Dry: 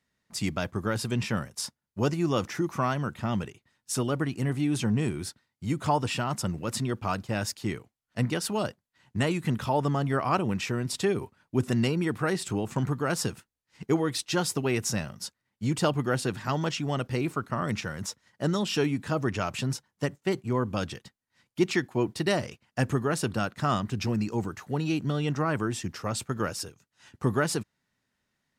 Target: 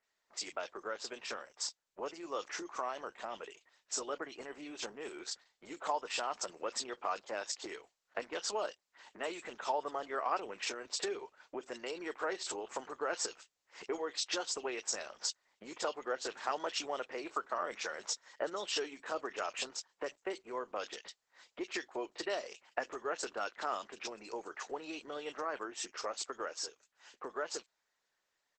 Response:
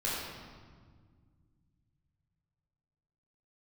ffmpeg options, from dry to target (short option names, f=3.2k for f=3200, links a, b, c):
-filter_complex "[0:a]dynaudnorm=f=270:g=31:m=15dB,acrossover=split=2500[a][b];[b]adelay=30[c];[a][c]amix=inputs=2:normalize=0,acompressor=threshold=-30dB:ratio=5,asettb=1/sr,asplit=3[d][e][f];[d]atrim=end=2.824[g];[e]atrim=start=2.82:end=3.39,asetpts=PTS-STARTPTS,afade=t=in:d=0.004:c=qsin,afade=t=out:st=0.566:d=0.004:c=qsin,adynamicequalizer=threshold=0.00224:dfrequency=1400:dqfactor=5.5:tfrequency=1400:tqfactor=5.5:attack=5:release=100:ratio=0.375:range=3.5:mode=cutabove:tftype=bell[h];[f]atrim=start=3.386[i];[g][h]acrossfade=d=0.004:c1=hsin:c2=qsin[j];[j][i]acrossfade=d=0.004:c1=qsin:c2=hsin,highpass=f=430:w=0.5412,highpass=f=430:w=1.3066,volume=-1dB" -ar 48000 -c:a libopus -b:a 12k